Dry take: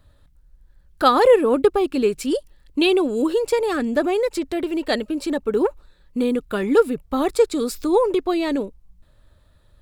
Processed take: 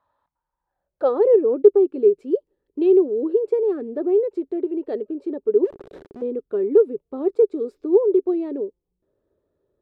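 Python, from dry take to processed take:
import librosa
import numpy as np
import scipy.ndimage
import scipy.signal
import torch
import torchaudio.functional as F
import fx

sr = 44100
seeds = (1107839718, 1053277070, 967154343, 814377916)

y = fx.clip_1bit(x, sr, at=(5.64, 6.22))
y = fx.filter_sweep_bandpass(y, sr, from_hz=950.0, to_hz=400.0, start_s=0.6, end_s=1.23, q=6.1)
y = y * 10.0 ** (6.0 / 20.0)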